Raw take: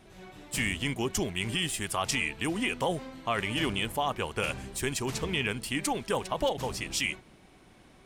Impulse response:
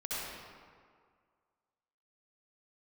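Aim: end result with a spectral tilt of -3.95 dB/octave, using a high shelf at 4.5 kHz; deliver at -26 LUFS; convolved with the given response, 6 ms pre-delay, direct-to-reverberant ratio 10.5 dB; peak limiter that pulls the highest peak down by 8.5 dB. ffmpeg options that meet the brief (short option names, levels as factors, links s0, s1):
-filter_complex "[0:a]highshelf=f=4500:g=-4.5,alimiter=level_in=1.19:limit=0.0631:level=0:latency=1,volume=0.841,asplit=2[s0][s1];[1:a]atrim=start_sample=2205,adelay=6[s2];[s1][s2]afir=irnorm=-1:irlink=0,volume=0.178[s3];[s0][s3]amix=inputs=2:normalize=0,volume=3.16"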